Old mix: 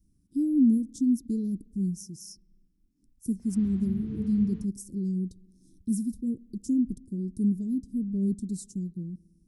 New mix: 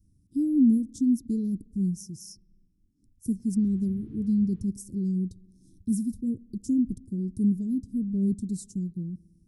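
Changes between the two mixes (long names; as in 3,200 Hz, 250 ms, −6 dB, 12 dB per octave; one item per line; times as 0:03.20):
background −12.0 dB
master: add parametric band 100 Hz +9.5 dB 0.93 octaves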